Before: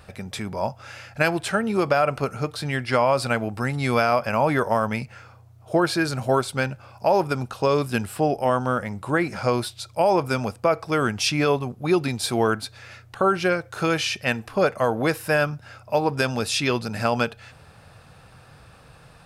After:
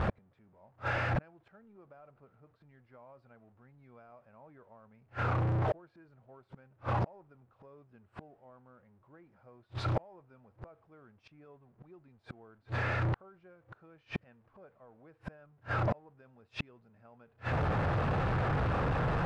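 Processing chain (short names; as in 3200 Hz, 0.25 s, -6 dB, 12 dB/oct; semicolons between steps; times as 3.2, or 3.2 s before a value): zero-crossing step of -27.5 dBFS; LPF 1400 Hz 12 dB/oct; flipped gate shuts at -26 dBFS, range -40 dB; gain +3.5 dB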